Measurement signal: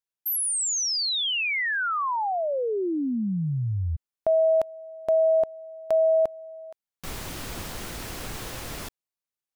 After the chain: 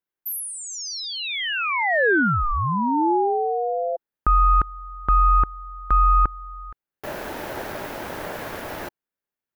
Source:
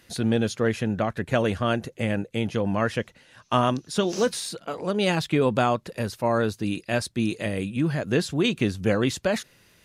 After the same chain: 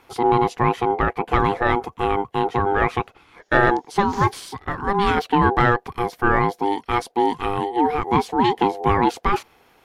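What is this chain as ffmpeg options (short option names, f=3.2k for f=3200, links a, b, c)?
-af "equalizer=f=250:t=o:w=1:g=6,equalizer=f=1k:t=o:w=1:g=8,equalizer=f=4k:t=o:w=1:g=-4,equalizer=f=8k:t=o:w=1:g=-9,acontrast=32,aeval=exprs='val(0)*sin(2*PI*600*n/s)':c=same,volume=-1dB"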